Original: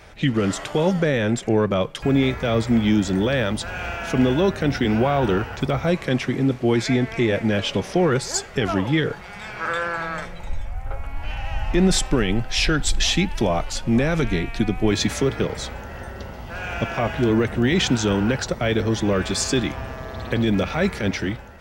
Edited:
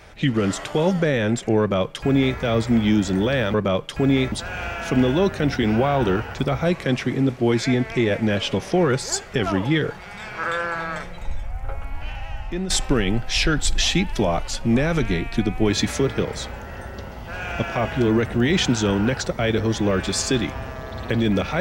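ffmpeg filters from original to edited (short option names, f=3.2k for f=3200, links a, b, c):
-filter_complex "[0:a]asplit=4[a][b][c][d];[a]atrim=end=3.542[e];[b]atrim=start=1.598:end=2.382[f];[c]atrim=start=3.538:end=11.92,asetpts=PTS-STARTPTS,afade=t=out:st=7.542:d=0.84:silence=0.237137[g];[d]atrim=start=11.92,asetpts=PTS-STARTPTS,afade=t=in:d=0.004:c=hsin:silence=0.237137[h];[e][f]acrossfade=d=0.004:c1=hsin:c2=hsin[i];[g][h]concat=n=2:v=0:a=1[j];[i][j]acrossfade=d=0.004:c1=hsin:c2=hsin"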